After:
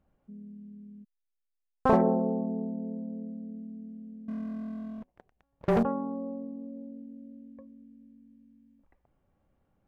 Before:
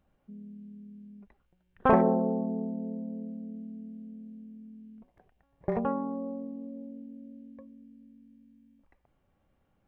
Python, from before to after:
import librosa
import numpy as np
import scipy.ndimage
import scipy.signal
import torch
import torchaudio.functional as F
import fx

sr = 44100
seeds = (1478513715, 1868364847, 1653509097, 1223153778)

y = fx.high_shelf(x, sr, hz=2200.0, db=-9.5)
y = fx.backlash(y, sr, play_db=-35.0, at=(1.03, 1.96), fade=0.02)
y = fx.leveller(y, sr, passes=3, at=(4.28, 5.83))